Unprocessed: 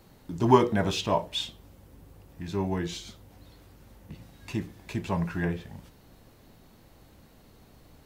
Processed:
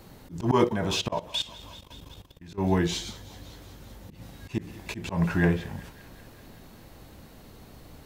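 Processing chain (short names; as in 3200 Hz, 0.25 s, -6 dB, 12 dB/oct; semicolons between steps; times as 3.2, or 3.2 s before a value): thinning echo 0.19 s, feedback 75%, high-pass 670 Hz, level -18.5 dB; auto swell 0.147 s; 0.64–2.58 level quantiser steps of 17 dB; gain +6.5 dB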